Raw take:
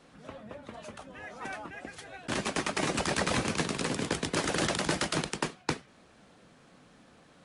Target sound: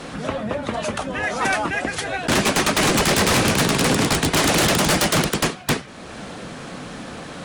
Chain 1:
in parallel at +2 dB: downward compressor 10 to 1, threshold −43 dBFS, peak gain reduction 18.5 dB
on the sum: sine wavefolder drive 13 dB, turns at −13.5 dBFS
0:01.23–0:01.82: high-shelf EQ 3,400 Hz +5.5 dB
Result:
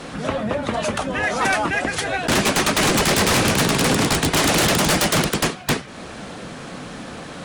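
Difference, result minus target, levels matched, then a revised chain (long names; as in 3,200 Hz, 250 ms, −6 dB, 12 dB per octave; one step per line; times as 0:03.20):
downward compressor: peak gain reduction −7 dB
in parallel at +2 dB: downward compressor 10 to 1, threshold −51 dBFS, peak gain reduction 26 dB
on the sum: sine wavefolder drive 13 dB, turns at −13.5 dBFS
0:01.23–0:01.82: high-shelf EQ 3,400 Hz +5.5 dB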